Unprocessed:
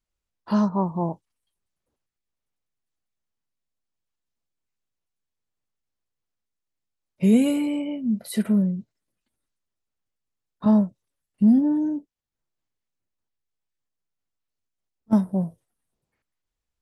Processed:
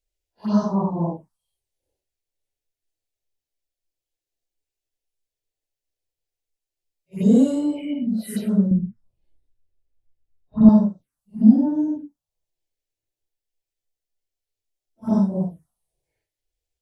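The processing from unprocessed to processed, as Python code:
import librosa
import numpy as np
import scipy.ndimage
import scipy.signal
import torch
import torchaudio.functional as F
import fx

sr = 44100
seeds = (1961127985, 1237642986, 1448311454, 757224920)

y = fx.phase_scramble(x, sr, seeds[0], window_ms=200)
y = fx.env_phaser(y, sr, low_hz=200.0, high_hz=2400.0, full_db=-21.5)
y = fx.riaa(y, sr, side='playback', at=(8.71, 10.69))
y = y * librosa.db_to_amplitude(2.5)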